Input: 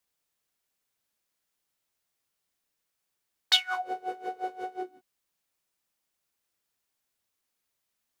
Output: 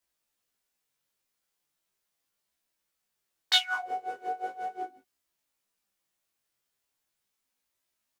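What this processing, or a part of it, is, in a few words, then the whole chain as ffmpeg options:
double-tracked vocal: -filter_complex "[0:a]asplit=2[a][b];[b]adelay=15,volume=-3dB[c];[a][c]amix=inputs=2:normalize=0,flanger=delay=18:depth=4.6:speed=0.38,volume=1dB"

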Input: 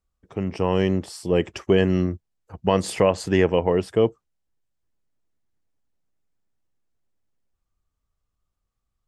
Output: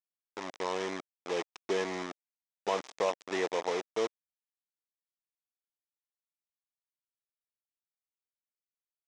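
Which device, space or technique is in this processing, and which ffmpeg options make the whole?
hand-held game console: -af "acrusher=bits=3:mix=0:aa=0.000001,highpass=480,equalizer=f=550:t=q:w=4:g=-3,equalizer=f=1.5k:t=q:w=4:g=-6,equalizer=f=2.8k:t=q:w=4:g=-6,equalizer=f=4.4k:t=q:w=4:g=-8,lowpass=f=5.9k:w=0.5412,lowpass=f=5.9k:w=1.3066,volume=-7.5dB"

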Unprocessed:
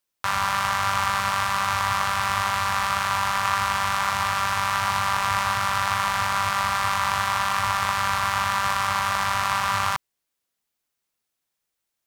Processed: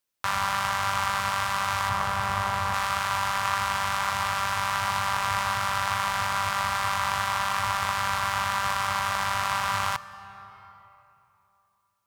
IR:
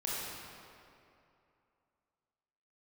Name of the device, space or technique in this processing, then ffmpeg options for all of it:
compressed reverb return: -filter_complex "[0:a]asettb=1/sr,asplit=3[a][b][c];[a]atrim=end=1.894[d];[b]atrim=start=1.89:end=2.74,asetpts=PTS-STARTPTS,afade=t=in:d=0.004:c=qsin,afade=t=out:st=0.846:d=0.004:c=qsin,tiltshelf=f=1.2k:g=4.5[e];[c]atrim=start=2.736[f];[d][e]acrossfade=d=0.004:c1=hsin:c2=qsin[g];[g][f]acrossfade=d=0.004:c1=qsin:c2=hsin,asplit=2[h][i];[1:a]atrim=start_sample=2205[j];[i][j]afir=irnorm=-1:irlink=0,acompressor=threshold=-27dB:ratio=5,volume=-10dB[k];[h][k]amix=inputs=2:normalize=0,volume=-3.5dB"

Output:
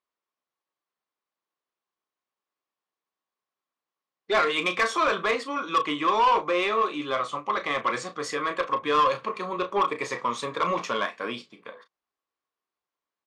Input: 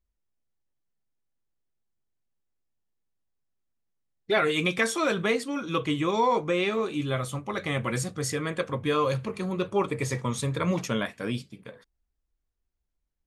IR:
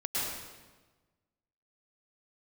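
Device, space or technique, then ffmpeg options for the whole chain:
intercom: -filter_complex "[0:a]highpass=420,lowpass=4.5k,equalizer=f=1.1k:t=o:w=0.32:g=11,asoftclip=type=tanh:threshold=-19.5dB,asplit=2[a][b];[b]adelay=34,volume=-10.5dB[c];[a][c]amix=inputs=2:normalize=0,asettb=1/sr,asplit=3[d][e][f];[d]atrim=end=7.144[g];[e]atrim=start=7.14:end=8.24,asetpts=PTS-STARTPTS,afade=t=in:d=0.004:c=qsin,afade=t=out:st=1.096:d=0.004:c=qsin,lowpass=f=9.3k:w=0.5412,lowpass=f=9.3k:w=1.3066[h];[f]atrim=start=8.236[i];[g][h]acrossfade=d=0.004:c1=hsin:c2=qsin[j];[j][i]acrossfade=d=0.004:c1=qsin:c2=hsin,volume=3.5dB"

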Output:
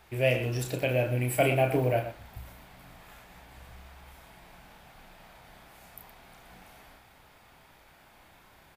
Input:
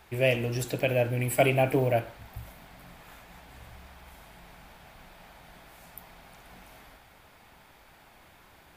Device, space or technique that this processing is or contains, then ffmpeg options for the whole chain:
slapback doubling: -filter_complex "[0:a]asplit=3[a][b][c];[b]adelay=32,volume=-6dB[d];[c]adelay=118,volume=-12dB[e];[a][d][e]amix=inputs=3:normalize=0,volume=-2.5dB"

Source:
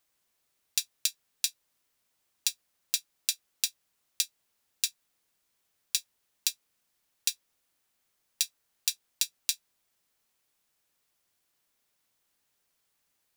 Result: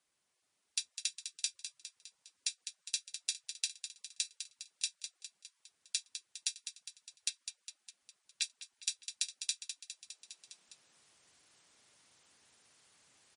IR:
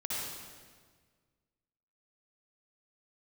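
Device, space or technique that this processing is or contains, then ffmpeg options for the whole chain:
low-bitrate web radio: -filter_complex "[0:a]asettb=1/sr,asplit=3[a][b][c];[a]atrim=end=7.294[d];[b]atrim=start=7.29:end=8.42,asetpts=PTS-STARTPTS,afade=t=in:d=0.004:c=qsin,afade=t=out:st=1.126:d=0.004:c=qsin,acrossover=split=3800[e][f];[f]acompressor=threshold=-44dB:ratio=4:attack=1:release=60[g];[e][g]amix=inputs=2:normalize=0[h];[c]atrim=start=8.416[i];[d][h]acrossfade=d=0.004:c1=hsin:c2=qsin[j];[j][i]acrossfade=d=0.004:c1=qsin:c2=hsin,highpass=79,aecho=1:1:204|408|612|816|1020|1224:0.188|0.107|0.0612|0.0349|0.0199|0.0113,dynaudnorm=f=340:g=5:m=14.5dB,alimiter=limit=-7dB:level=0:latency=1:release=91,volume=-2.5dB" -ar 44100 -c:a libmp3lame -b:a 40k

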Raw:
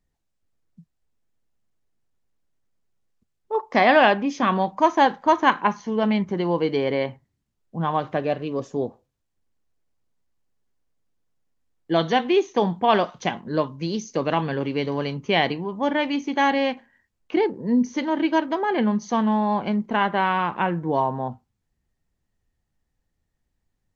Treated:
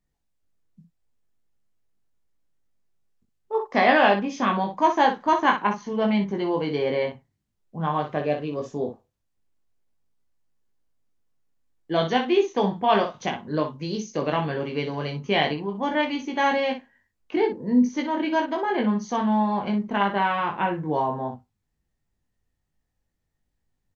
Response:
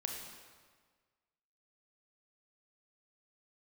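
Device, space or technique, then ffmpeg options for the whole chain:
slapback doubling: -filter_complex "[0:a]asplit=3[a][b][c];[b]adelay=20,volume=-3.5dB[d];[c]adelay=61,volume=-8.5dB[e];[a][d][e]amix=inputs=3:normalize=0,volume=-3.5dB"

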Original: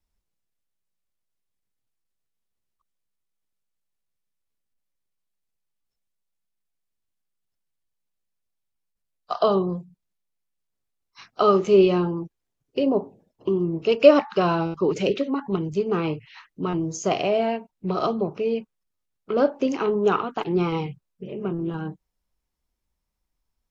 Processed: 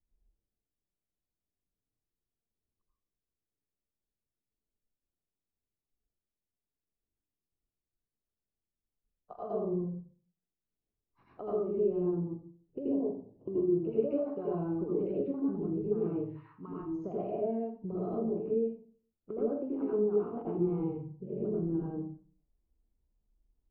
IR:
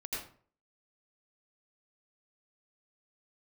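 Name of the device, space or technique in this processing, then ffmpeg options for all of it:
television next door: -filter_complex "[0:a]asettb=1/sr,asplit=3[a][b][c];[a]atrim=end=16.274[d];[b]atrim=start=16.27:end=16.97,asetpts=PTS-STARTPTS,afade=t=in:d=0.004:c=qsin,afade=t=out:st=0.696:d=0.004:c=qsin,lowshelf=f=780:t=q:w=3:g=-10[e];[c]atrim=start=16.966[f];[d][e]acrossfade=d=0.004:c1=hsin:c2=qsin[g];[g][f]acrossfade=d=0.004:c1=qsin:c2=hsin,acompressor=threshold=-30dB:ratio=5,lowpass=500[h];[1:a]atrim=start_sample=2205[i];[h][i]afir=irnorm=-1:irlink=0,asettb=1/sr,asplit=3[j][k][l];[j]atrim=end=13.534[m];[k]atrim=start=13.53:end=14.53,asetpts=PTS-STARTPTS,afade=t=in:d=0.004:c=qsin,afade=t=out:st=0.996:d=0.004:c=qsin,asplit=2[n][o];[o]adelay=14,volume=-5.5dB[p];[n][p]amix=inputs=2:normalize=0,atrim=end_sample=44100[q];[l]atrim=start=14.526[r];[m][q]acrossfade=d=0.004:c1=hsin:c2=qsin[s];[s][r]acrossfade=d=0.004:c1=qsin:c2=hsin"

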